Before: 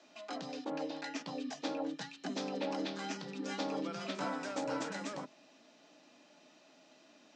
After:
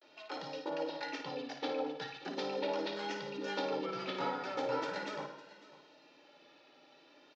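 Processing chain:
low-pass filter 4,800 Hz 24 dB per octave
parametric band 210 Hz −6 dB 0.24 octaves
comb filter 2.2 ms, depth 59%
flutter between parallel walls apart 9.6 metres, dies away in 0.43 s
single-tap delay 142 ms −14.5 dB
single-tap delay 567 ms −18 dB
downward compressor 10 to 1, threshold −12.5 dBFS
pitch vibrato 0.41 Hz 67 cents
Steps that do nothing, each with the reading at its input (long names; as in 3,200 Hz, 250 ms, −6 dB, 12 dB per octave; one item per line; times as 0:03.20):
downward compressor, threshold −12.5 dBFS: peak of its input −22.5 dBFS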